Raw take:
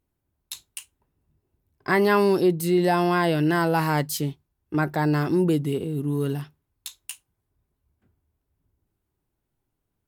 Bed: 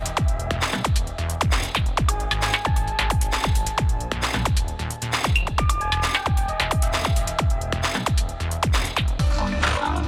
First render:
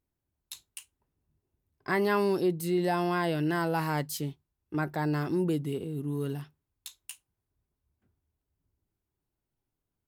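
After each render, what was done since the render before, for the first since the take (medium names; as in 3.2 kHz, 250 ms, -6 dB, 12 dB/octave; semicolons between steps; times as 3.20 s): trim -7 dB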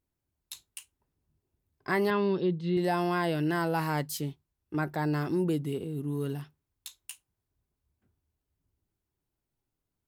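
2.10–2.77 s: cabinet simulation 120–3700 Hz, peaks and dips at 180 Hz +5 dB, 290 Hz -7 dB, 730 Hz -10 dB, 1.4 kHz -4 dB, 2.3 kHz -5 dB, 3.5 kHz +6 dB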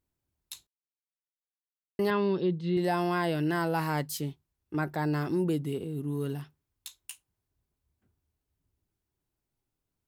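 0.67–1.99 s: mute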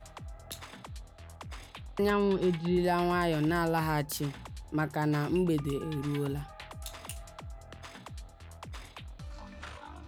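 add bed -23.5 dB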